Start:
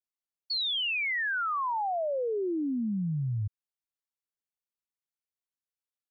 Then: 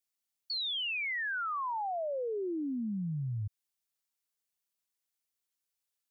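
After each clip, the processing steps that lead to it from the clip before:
high-shelf EQ 2,600 Hz +9 dB
brickwall limiter −31.5 dBFS, peak gain reduction 11.5 dB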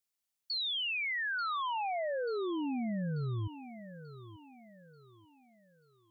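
feedback echo with a high-pass in the loop 887 ms, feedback 43%, high-pass 150 Hz, level −12 dB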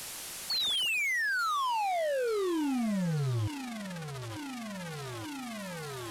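linear delta modulator 64 kbit/s, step −41.5 dBFS
soft clipping −35.5 dBFS, distortion −14 dB
level +8 dB

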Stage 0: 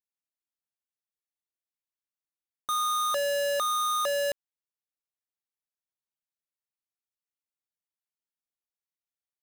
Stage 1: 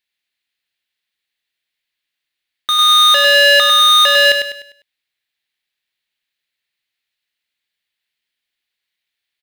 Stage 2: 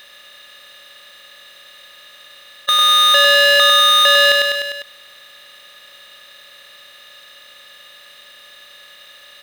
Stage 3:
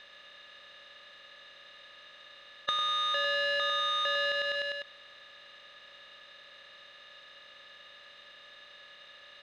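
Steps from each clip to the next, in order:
flat-topped bell 2,700 Hz +14.5 dB; on a send: repeating echo 100 ms, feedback 38%, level −6 dB; on the sum: level +7.5 dB
compressor on every frequency bin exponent 0.4; level −3 dB
downward compressor 6 to 1, threshold −18 dBFS, peak gain reduction 9.5 dB; high-frequency loss of the air 160 metres; level −7 dB

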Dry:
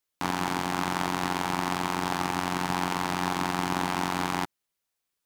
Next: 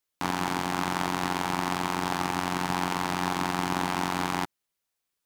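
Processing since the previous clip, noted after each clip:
no processing that can be heard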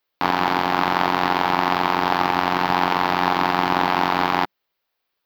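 drawn EQ curve 190 Hz 0 dB, 470 Hz +7 dB, 680 Hz +8 dB, 4,700 Hz +4 dB, 9,100 Hz −23 dB, 15,000 Hz +4 dB
level +3 dB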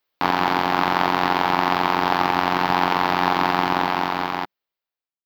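fade-out on the ending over 1.73 s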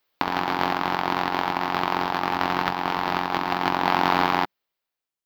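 compressor whose output falls as the input rises −23 dBFS, ratio −0.5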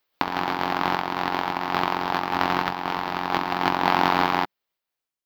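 amplitude modulation by smooth noise, depth 50%
level +2 dB

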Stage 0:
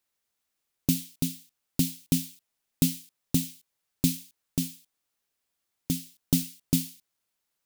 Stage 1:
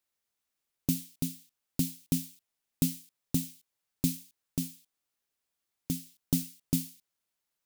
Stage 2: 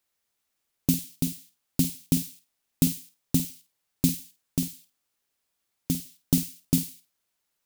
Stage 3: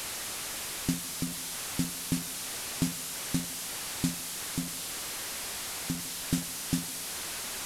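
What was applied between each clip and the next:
dynamic equaliser 3,200 Hz, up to −4 dB, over −48 dBFS, Q 0.92; level −4 dB
flutter between parallel walls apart 8.8 metres, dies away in 0.26 s; level +5.5 dB
linear delta modulator 64 kbit/s, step −23 dBFS; level −6.5 dB

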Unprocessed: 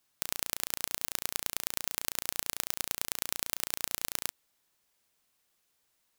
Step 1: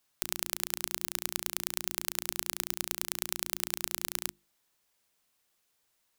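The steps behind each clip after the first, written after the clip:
mains-hum notches 50/100/150/200/250/300/350 Hz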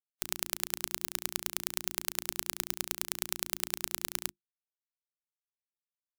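every bin expanded away from the loudest bin 2.5 to 1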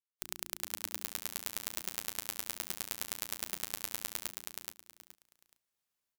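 automatic gain control gain up to 13.5 dB
on a send: repeating echo 424 ms, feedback 23%, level −3.5 dB
on the sum: level −6 dB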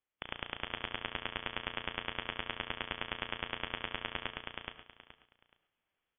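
voice inversion scrambler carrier 3,400 Hz
reverb whose tail is shaped and stops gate 150 ms rising, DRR 12 dB
level +7.5 dB

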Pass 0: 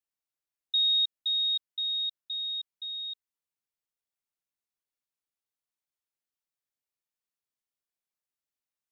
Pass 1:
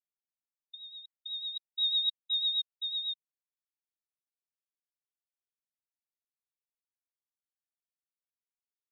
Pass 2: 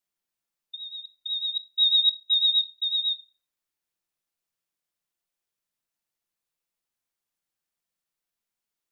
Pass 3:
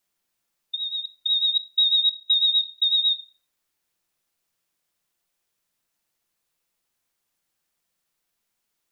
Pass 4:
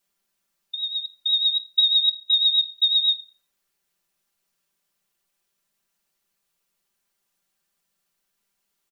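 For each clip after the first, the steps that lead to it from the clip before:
compressor whose output falls as the input rises −31 dBFS, ratio −0.5; rotating-speaker cabinet horn 8 Hz; every bin expanded away from the loudest bin 1.5 to 1; level +2.5 dB
rectangular room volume 500 cubic metres, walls furnished, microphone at 0.83 metres; level +8 dB
downward compressor, threshold −27 dBFS, peak gain reduction 10.5 dB; level +9 dB
comb filter 5.1 ms

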